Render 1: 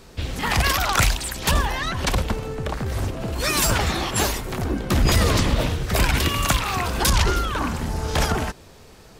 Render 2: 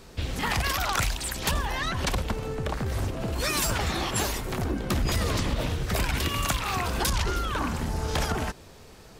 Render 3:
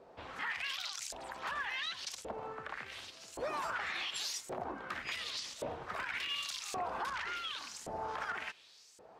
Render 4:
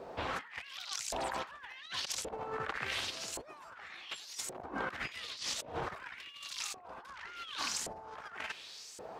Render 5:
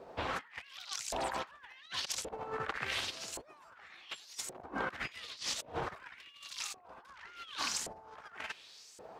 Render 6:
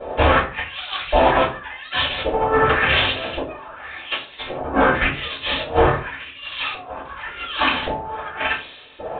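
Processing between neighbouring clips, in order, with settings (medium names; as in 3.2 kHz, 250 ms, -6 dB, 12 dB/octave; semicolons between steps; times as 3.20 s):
compression 3:1, threshold -22 dBFS, peak gain reduction 7 dB; trim -2 dB
LFO band-pass saw up 0.89 Hz 560–7800 Hz; peak limiter -30 dBFS, peak gain reduction 10.5 dB; trim +1 dB
compressor with a negative ratio -46 dBFS, ratio -0.5; trim +5 dB
upward expansion 1.5:1, over -50 dBFS; trim +1.5 dB
reverberation, pre-delay 3 ms, DRR -10.5 dB; resampled via 8 kHz; trim +8 dB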